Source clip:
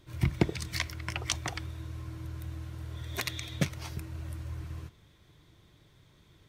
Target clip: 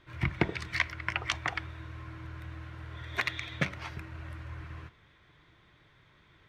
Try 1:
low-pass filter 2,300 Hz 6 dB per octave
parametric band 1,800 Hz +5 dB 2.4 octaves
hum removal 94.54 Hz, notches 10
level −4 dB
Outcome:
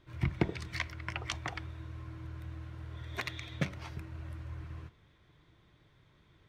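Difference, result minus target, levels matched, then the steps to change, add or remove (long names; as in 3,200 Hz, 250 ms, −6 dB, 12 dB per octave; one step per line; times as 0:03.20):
2,000 Hz band −3.5 dB
change: parametric band 1,800 Hz +13.5 dB 2.4 octaves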